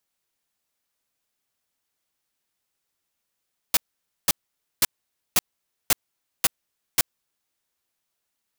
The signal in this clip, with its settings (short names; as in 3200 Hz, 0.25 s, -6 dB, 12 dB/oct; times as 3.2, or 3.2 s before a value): noise bursts white, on 0.03 s, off 0.51 s, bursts 7, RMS -17.5 dBFS